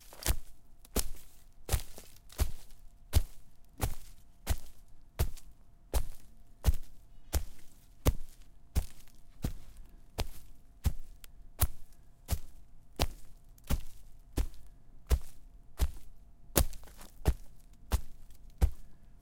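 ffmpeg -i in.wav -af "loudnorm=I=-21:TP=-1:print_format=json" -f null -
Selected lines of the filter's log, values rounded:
"input_i" : "-37.0",
"input_tp" : "-7.7",
"input_lra" : "3.3",
"input_thresh" : "-49.2",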